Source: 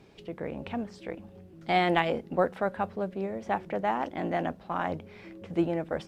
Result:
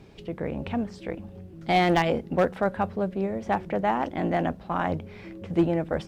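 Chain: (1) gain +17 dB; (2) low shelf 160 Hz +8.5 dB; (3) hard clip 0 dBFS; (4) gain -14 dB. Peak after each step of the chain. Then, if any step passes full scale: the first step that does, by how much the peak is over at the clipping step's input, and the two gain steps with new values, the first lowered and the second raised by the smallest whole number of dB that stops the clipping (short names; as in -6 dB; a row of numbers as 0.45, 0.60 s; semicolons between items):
+7.0, +6.0, 0.0, -14.0 dBFS; step 1, 6.0 dB; step 1 +11 dB, step 4 -8 dB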